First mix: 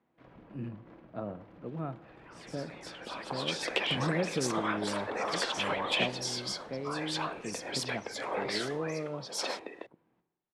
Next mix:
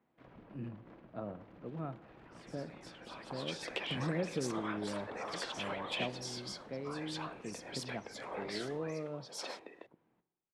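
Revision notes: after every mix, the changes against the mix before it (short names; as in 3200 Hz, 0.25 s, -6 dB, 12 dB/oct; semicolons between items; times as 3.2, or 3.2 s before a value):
speech -4.0 dB; first sound: send -6.0 dB; second sound -8.5 dB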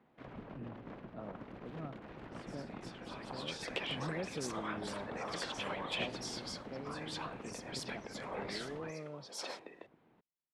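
speech -4.0 dB; first sound +9.5 dB; reverb: off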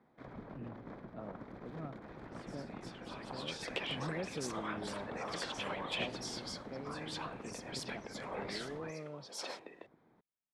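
first sound: add bell 2800 Hz -14 dB 0.24 oct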